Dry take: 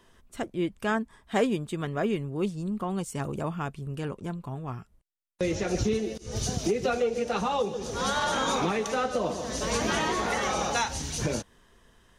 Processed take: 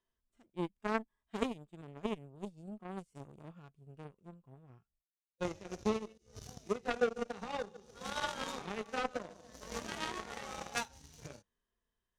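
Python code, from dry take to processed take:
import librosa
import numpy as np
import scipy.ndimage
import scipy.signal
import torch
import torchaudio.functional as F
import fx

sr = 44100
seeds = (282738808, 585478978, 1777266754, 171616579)

y = fx.hpss(x, sr, part='percussive', gain_db=-17)
y = fx.cheby_harmonics(y, sr, harmonics=(3,), levels_db=(-10,), full_scale_db=-16.5)
y = y * 10.0 ** (1.0 / 20.0)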